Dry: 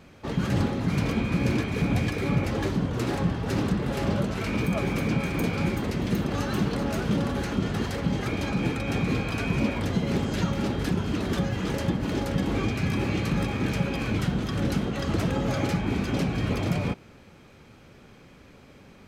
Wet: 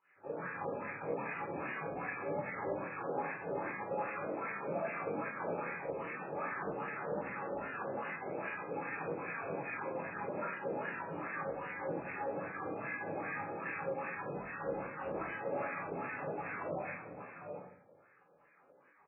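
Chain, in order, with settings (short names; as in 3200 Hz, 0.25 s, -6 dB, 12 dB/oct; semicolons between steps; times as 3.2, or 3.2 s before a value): rattling part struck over -31 dBFS, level -26 dBFS; vibrato 1.5 Hz 14 cents; 6.61–8.05 doubler 15 ms -13 dB; in parallel at -5.5 dB: bit-crush 6-bit; on the sum: de-hum 90.07 Hz, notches 19; on a send: echo 0.659 s -6.5 dB; on the sum: pump 125 bpm, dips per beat 1, -22 dB, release 90 ms; HPF 63 Hz 6 dB/oct; wah 2.5 Hz 510–1900 Hz, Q 5.9; shoebox room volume 810 m³, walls furnished, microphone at 4.1 m; gain -6.5 dB; MP3 8 kbps 8000 Hz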